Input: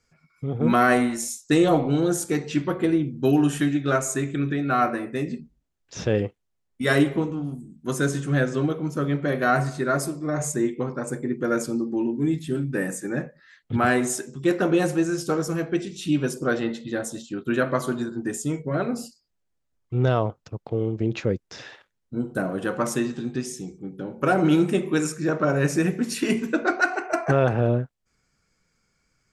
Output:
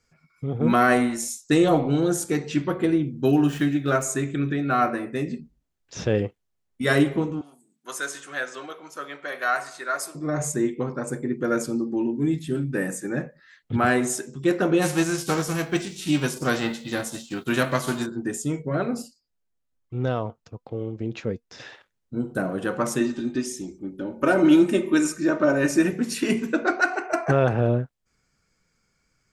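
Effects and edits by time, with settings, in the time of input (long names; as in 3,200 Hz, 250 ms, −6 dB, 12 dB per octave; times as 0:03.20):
0:03.28–0:04.02: running median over 5 samples
0:07.41–0:10.15: high-pass filter 860 Hz
0:14.81–0:18.05: spectral envelope flattened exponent 0.6
0:19.02–0:21.60: flanger 1.1 Hz, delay 3.5 ms, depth 1 ms, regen +71%
0:23.00–0:25.93: comb filter 3.3 ms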